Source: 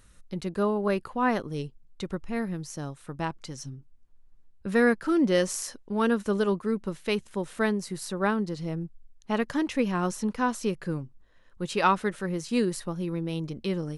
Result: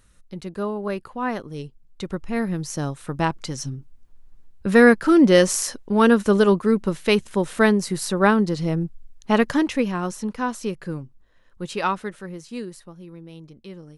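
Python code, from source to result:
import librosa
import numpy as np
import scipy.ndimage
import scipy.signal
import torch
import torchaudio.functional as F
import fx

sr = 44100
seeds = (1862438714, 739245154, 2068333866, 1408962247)

y = fx.gain(x, sr, db=fx.line((1.48, -1.0), (2.79, 9.0), (9.46, 9.0), (10.01, 1.0), (11.65, 1.0), (12.94, -10.0)))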